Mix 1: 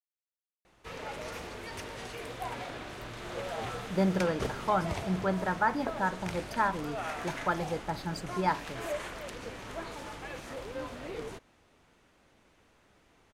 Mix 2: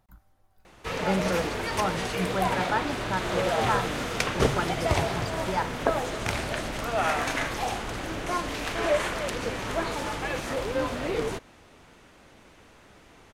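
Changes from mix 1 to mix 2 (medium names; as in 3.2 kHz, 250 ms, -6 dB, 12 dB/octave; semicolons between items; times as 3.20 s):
speech: entry -2.90 s; background +11.0 dB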